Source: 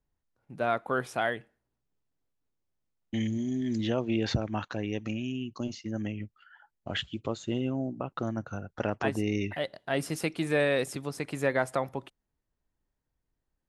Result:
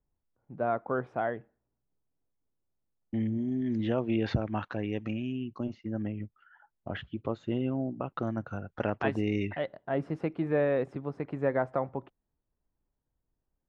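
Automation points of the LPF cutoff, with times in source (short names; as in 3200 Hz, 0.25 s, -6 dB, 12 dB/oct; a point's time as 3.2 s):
3.16 s 1100 Hz
4.04 s 2600 Hz
5.14 s 2600 Hz
5.8 s 1500 Hz
7.03 s 1500 Hz
7.96 s 3100 Hz
9.41 s 3100 Hz
9.85 s 1200 Hz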